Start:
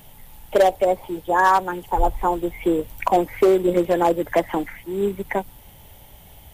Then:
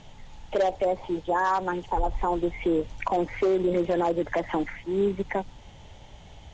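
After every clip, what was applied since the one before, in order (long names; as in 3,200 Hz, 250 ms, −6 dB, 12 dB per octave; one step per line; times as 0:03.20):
Chebyshev low-pass filter 6,900 Hz, order 5
brickwall limiter −16.5 dBFS, peak gain reduction 10 dB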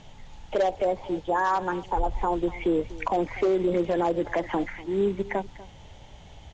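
single-tap delay 244 ms −18.5 dB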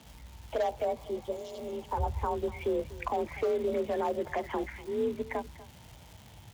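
frequency shifter +42 Hz
surface crackle 510 per second −38 dBFS
healed spectral selection 0:01.01–0:01.80, 710–2,800 Hz
level −6 dB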